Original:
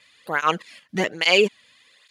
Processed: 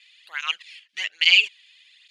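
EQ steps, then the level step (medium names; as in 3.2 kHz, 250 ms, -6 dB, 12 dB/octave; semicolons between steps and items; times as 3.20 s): resonant high-pass 2.7 kHz, resonance Q 2.3; distance through air 72 m; treble shelf 6.5 kHz +4.5 dB; -1.5 dB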